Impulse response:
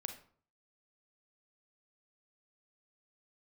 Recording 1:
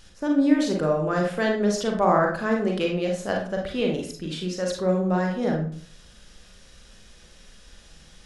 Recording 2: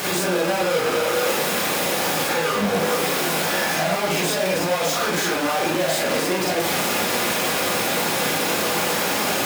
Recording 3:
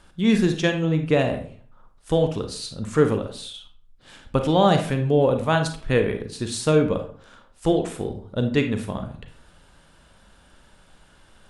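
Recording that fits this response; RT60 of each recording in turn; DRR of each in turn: 3; 0.50, 0.50, 0.50 seconds; 0.0, −5.5, 5.5 decibels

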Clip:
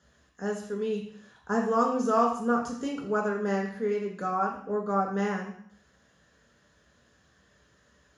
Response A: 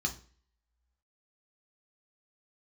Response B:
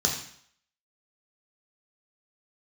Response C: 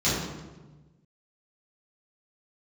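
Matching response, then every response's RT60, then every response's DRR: B; 0.45, 0.60, 1.2 seconds; 1.5, −0.5, −11.5 decibels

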